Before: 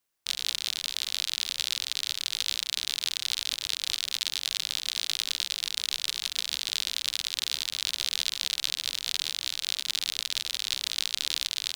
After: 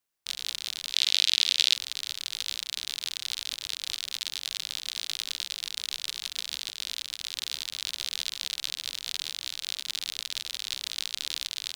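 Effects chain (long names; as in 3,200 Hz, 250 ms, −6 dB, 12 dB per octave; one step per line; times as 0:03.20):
0:00.93–0:01.75: meter weighting curve D
0:06.69–0:07.38: compressor whose output falls as the input rises −33 dBFS, ratio −0.5
level −3.5 dB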